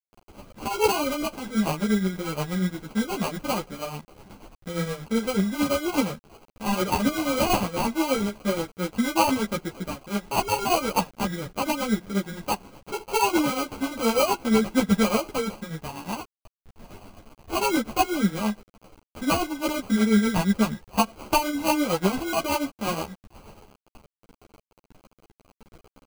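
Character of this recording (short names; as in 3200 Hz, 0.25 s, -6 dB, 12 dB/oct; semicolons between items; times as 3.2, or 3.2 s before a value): a quantiser's noise floor 8-bit, dither none; tremolo triangle 8.4 Hz, depth 70%; aliases and images of a low sample rate 1800 Hz, jitter 0%; a shimmering, thickened sound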